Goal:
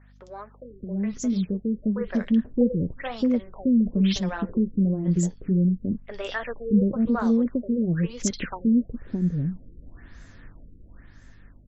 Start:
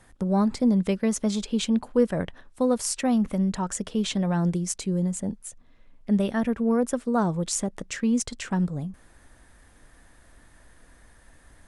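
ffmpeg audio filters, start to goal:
-filter_complex "[0:a]equalizer=f=830:w=1.3:g=-8.5,acrossover=split=520|3100[s0][s1][s2];[s2]adelay=60[s3];[s0]adelay=620[s4];[s4][s1][s3]amix=inputs=3:normalize=0,asplit=2[s5][s6];[s6]acompressor=threshold=0.0158:ratio=6,volume=1.33[s7];[s5][s7]amix=inputs=2:normalize=0,flanger=delay=2.8:depth=5:regen=-58:speed=1.2:shape=sinusoidal,dynaudnorm=f=270:g=13:m=3.35,aeval=exprs='val(0)+0.00398*(sin(2*PI*50*n/s)+sin(2*PI*2*50*n/s)/2+sin(2*PI*3*50*n/s)/3+sin(2*PI*4*50*n/s)/4+sin(2*PI*5*50*n/s)/5)':c=same,afftfilt=real='re*lt(b*sr/1024,510*pow(7900/510,0.5+0.5*sin(2*PI*1*pts/sr)))':imag='im*lt(b*sr/1024,510*pow(7900/510,0.5+0.5*sin(2*PI*1*pts/sr)))':win_size=1024:overlap=0.75,volume=0.631"

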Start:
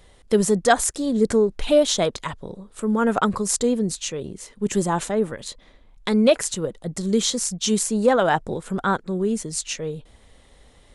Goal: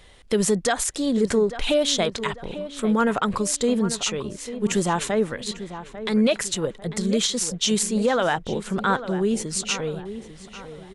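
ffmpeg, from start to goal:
-filter_complex "[0:a]equalizer=f=2700:t=o:w=1.9:g=6.5,alimiter=limit=0.251:level=0:latency=1:release=108,asplit=2[s0][s1];[s1]adelay=846,lowpass=f=2200:p=1,volume=0.251,asplit=2[s2][s3];[s3]adelay=846,lowpass=f=2200:p=1,volume=0.42,asplit=2[s4][s5];[s5]adelay=846,lowpass=f=2200:p=1,volume=0.42,asplit=2[s6][s7];[s7]adelay=846,lowpass=f=2200:p=1,volume=0.42[s8];[s0][s2][s4][s6][s8]amix=inputs=5:normalize=0"

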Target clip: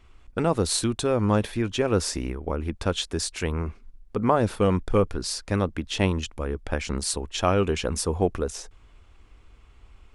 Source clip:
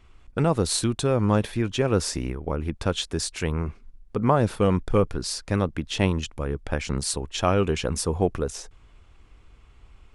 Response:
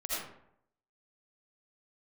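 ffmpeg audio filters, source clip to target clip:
-af "equalizer=f=140:t=o:w=0.3:g=-10"

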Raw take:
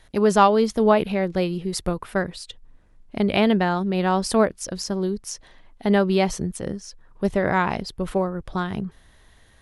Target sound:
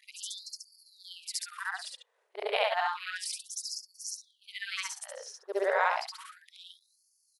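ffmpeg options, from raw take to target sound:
-af "afftfilt=real='re':imag='-im':win_size=8192:overlap=0.75,atempo=1.3,afftfilt=real='re*gte(b*sr/1024,370*pow(4400/370,0.5+0.5*sin(2*PI*0.31*pts/sr)))':imag='im*gte(b*sr/1024,370*pow(4400/370,0.5+0.5*sin(2*PI*0.31*pts/sr)))':win_size=1024:overlap=0.75,volume=1.12"

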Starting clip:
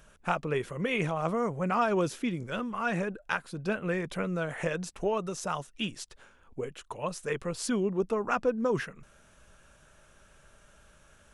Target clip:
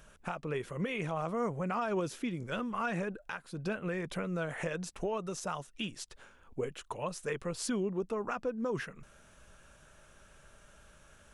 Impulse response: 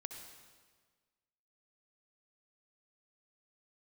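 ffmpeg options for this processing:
-af "alimiter=level_in=1.12:limit=0.0631:level=0:latency=1:release=316,volume=0.891"

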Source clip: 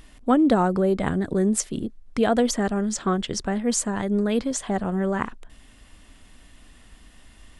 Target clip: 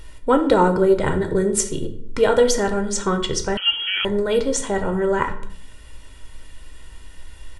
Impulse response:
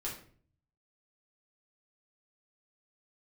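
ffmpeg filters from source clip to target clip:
-filter_complex "[0:a]aecho=1:1:2.1:0.65,asplit=2[s0][s1];[1:a]atrim=start_sample=2205,asetrate=34398,aresample=44100[s2];[s1][s2]afir=irnorm=-1:irlink=0,volume=0.631[s3];[s0][s3]amix=inputs=2:normalize=0,asettb=1/sr,asplit=3[s4][s5][s6];[s4]atrim=end=3.574[s7];[s5]atrim=start=3.57:end=4.05,asetpts=PTS-STARTPTS,afade=t=in:d=0.004:c=qsin,afade=t=out:st=0.476:d=0.004:c=qsin,lowpass=f=2800:t=q:w=0.5098,lowpass=f=2800:t=q:w=0.6013,lowpass=f=2800:t=q:w=0.9,lowpass=f=2800:t=q:w=2.563,afreqshift=-3300[s8];[s6]atrim=start=4.046[s9];[s7][s8]acrossfade=d=0.004:c1=hsin:c2=qsin[s10];[s10][s9]acrossfade=d=0.004:c1=qsin:c2=hsin"

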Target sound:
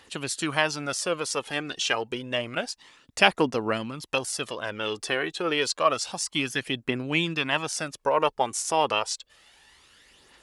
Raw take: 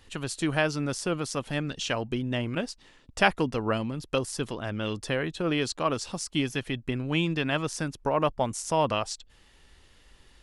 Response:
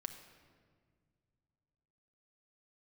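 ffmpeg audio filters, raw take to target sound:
-af "aphaser=in_gain=1:out_gain=1:delay=2.8:decay=0.44:speed=0.29:type=triangular,highpass=f=580:p=1,volume=1.68"

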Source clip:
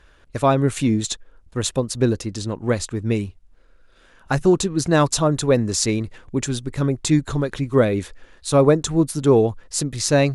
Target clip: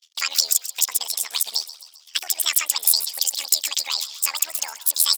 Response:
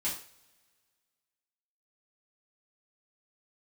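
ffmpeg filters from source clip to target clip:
-filter_complex "[0:a]agate=range=0.00891:threshold=0.00355:ratio=16:detection=peak,highshelf=f=5100:g=-9,acompressor=threshold=0.0891:ratio=6,tremolo=f=40:d=0.889,highpass=f=2400:t=q:w=2.2,asplit=6[s0][s1][s2][s3][s4][s5];[s1]adelay=264,afreqshift=30,volume=0.168[s6];[s2]adelay=528,afreqshift=60,volume=0.0944[s7];[s3]adelay=792,afreqshift=90,volume=0.0525[s8];[s4]adelay=1056,afreqshift=120,volume=0.0295[s9];[s5]adelay=1320,afreqshift=150,volume=0.0166[s10];[s0][s6][s7][s8][s9][s10]amix=inputs=6:normalize=0,asetrate=88200,aresample=44100,alimiter=level_in=10.6:limit=0.891:release=50:level=0:latency=1,volume=0.891"

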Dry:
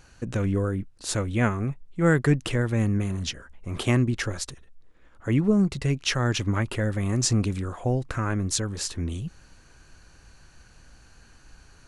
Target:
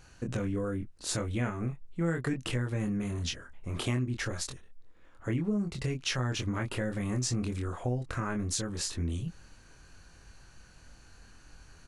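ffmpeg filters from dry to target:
-filter_complex "[0:a]asplit=2[s0][s1];[s1]adelay=24,volume=0.631[s2];[s0][s2]amix=inputs=2:normalize=0,acompressor=threshold=0.0501:ratio=3,volume=0.668"

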